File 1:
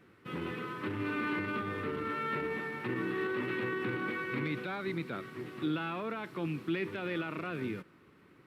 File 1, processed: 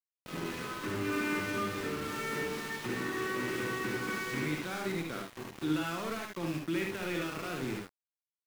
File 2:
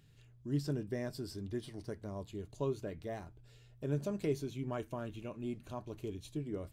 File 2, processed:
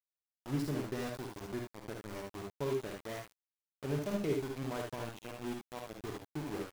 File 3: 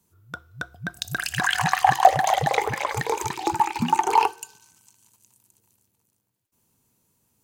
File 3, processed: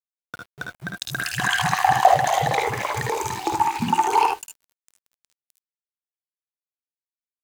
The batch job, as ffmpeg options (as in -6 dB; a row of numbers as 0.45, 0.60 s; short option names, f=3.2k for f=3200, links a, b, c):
-af "aeval=exprs='val(0)*gte(abs(val(0)),0.0119)':c=same,aecho=1:1:53|68|78:0.501|0.447|0.473,volume=-1dB"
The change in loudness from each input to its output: +0.5, +0.5, +1.0 LU